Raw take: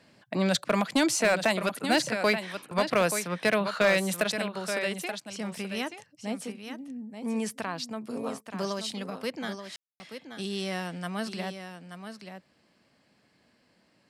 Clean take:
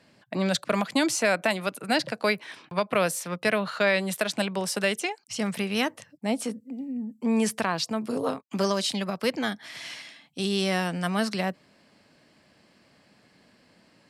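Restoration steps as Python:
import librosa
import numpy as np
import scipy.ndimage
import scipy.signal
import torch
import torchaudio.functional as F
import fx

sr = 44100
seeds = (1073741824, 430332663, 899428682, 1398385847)

y = fx.fix_declip(x, sr, threshold_db=-16.0)
y = fx.fix_ambience(y, sr, seeds[0], print_start_s=12.42, print_end_s=12.92, start_s=9.76, end_s=10.0)
y = fx.fix_echo_inverse(y, sr, delay_ms=880, level_db=-9.0)
y = fx.gain(y, sr, db=fx.steps((0.0, 0.0), (4.32, 7.0)))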